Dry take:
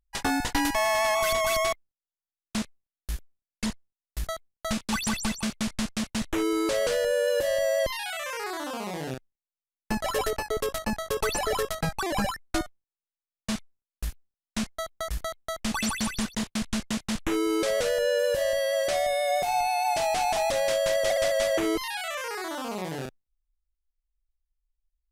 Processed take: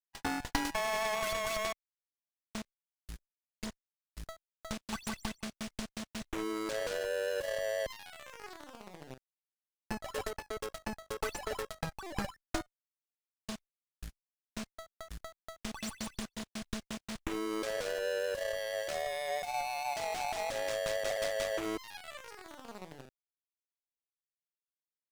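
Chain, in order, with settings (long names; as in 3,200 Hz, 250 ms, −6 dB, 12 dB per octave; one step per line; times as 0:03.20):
running median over 3 samples
power curve on the samples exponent 2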